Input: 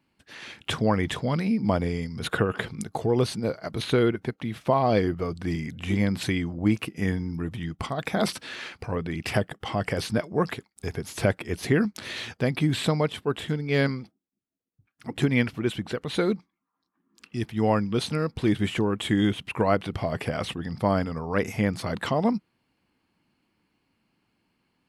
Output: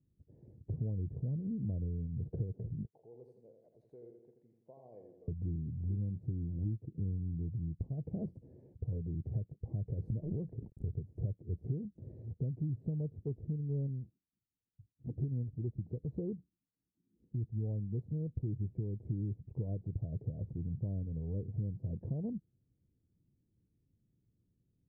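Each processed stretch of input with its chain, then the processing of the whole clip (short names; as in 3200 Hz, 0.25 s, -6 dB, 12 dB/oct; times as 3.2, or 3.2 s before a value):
2.85–5.28 HPF 1400 Hz + feedback echo 83 ms, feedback 53%, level -6 dB
9.89–10.97 G.711 law mismatch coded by A + backwards sustainer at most 31 dB/s
whole clip: inverse Chebyshev low-pass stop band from 1200 Hz, stop band 50 dB; resonant low shelf 170 Hz +10 dB, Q 1.5; compressor 4:1, threshold -28 dBFS; gain -7 dB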